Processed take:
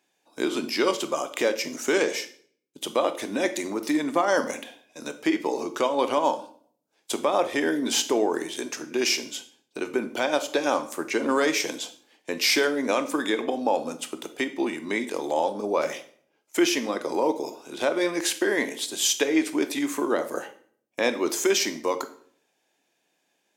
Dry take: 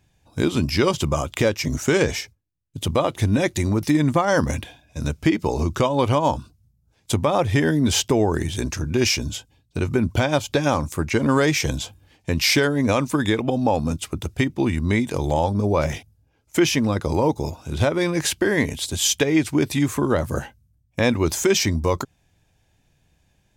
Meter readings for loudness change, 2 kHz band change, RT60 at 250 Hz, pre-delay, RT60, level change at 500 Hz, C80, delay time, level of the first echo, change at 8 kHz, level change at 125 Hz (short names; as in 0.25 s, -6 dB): -4.0 dB, -2.5 dB, 0.65 s, 19 ms, 0.55 s, -2.5 dB, 17.5 dB, none, none, -2.5 dB, -27.0 dB